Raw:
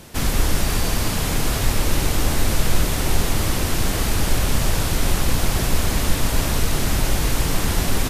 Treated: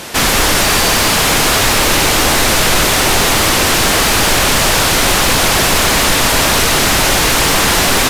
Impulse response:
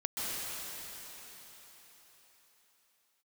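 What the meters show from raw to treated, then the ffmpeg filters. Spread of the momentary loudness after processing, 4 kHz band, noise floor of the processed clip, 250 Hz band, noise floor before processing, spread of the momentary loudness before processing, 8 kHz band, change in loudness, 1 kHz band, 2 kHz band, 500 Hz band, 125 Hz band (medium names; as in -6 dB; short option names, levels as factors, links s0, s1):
0 LU, +15.5 dB, -12 dBFS, +7.5 dB, -23 dBFS, 1 LU, +13.5 dB, +12.0 dB, +14.5 dB, +16.0 dB, +12.0 dB, +2.0 dB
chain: -filter_complex "[0:a]asplit=2[s0][s1];[s1]highpass=f=720:p=1,volume=10,asoftclip=type=tanh:threshold=0.668[s2];[s0][s2]amix=inputs=2:normalize=0,lowpass=f=6600:p=1,volume=0.501,acontrast=50,volume=0.891"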